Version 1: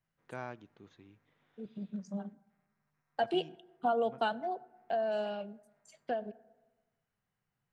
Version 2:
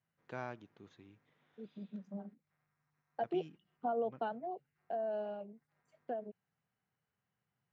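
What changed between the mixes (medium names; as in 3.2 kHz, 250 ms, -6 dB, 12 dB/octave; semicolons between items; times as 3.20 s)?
second voice: add band-pass filter 390 Hz, Q 0.61; reverb: off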